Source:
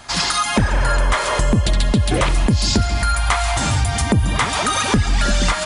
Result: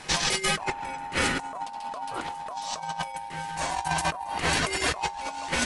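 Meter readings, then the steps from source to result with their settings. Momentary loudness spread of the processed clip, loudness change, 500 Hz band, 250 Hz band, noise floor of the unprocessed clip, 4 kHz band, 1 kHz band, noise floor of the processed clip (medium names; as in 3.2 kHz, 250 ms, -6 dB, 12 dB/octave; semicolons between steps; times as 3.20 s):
10 LU, -11.0 dB, -10.5 dB, -15.0 dB, -23 dBFS, -8.5 dB, -7.0 dB, -38 dBFS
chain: feedback comb 54 Hz, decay 0.25 s, harmonics odd, mix 60%; ring modulator 860 Hz; compressor with a negative ratio -29 dBFS, ratio -0.5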